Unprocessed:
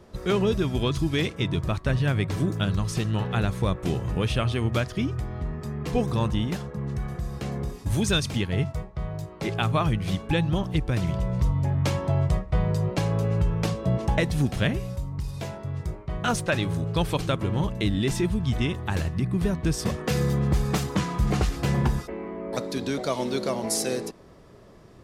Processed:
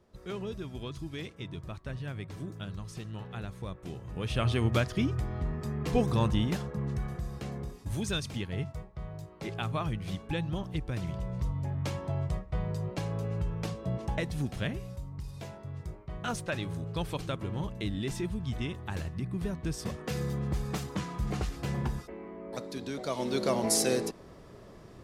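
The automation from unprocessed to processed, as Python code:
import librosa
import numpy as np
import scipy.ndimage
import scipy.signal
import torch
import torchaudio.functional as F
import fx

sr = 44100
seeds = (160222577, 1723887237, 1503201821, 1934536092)

y = fx.gain(x, sr, db=fx.line((4.06, -14.5), (4.47, -2.0), (6.78, -2.0), (7.77, -9.0), (22.93, -9.0), (23.55, 0.0)))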